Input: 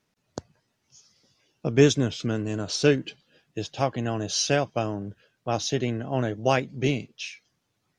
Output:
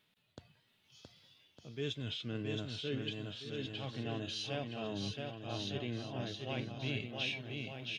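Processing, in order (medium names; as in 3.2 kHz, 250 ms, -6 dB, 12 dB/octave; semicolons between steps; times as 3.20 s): reverse; compression 6:1, threshold -35 dBFS, peak gain reduction 21.5 dB; reverse; resonant high shelf 4.5 kHz -10 dB, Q 3; harmonic-percussive split percussive -12 dB; pre-emphasis filter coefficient 0.8; bouncing-ball echo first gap 670 ms, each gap 0.8×, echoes 5; trim +12.5 dB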